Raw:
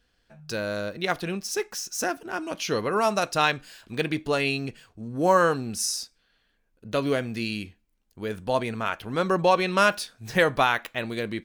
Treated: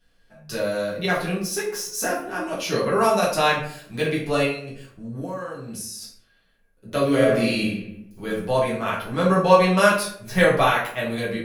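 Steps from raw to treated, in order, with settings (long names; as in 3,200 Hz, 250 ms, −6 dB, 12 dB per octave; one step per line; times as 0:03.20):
parametric band 11,000 Hz +11.5 dB 0.25 octaves
0:04.44–0:06.02: downward compressor 16 to 1, threshold −33 dBFS, peak gain reduction 19.5 dB
convolution reverb, pre-delay 5 ms, DRR −7 dB
0:07.15–0:08.27: thrown reverb, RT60 0.86 s, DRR −3 dB
level −4.5 dB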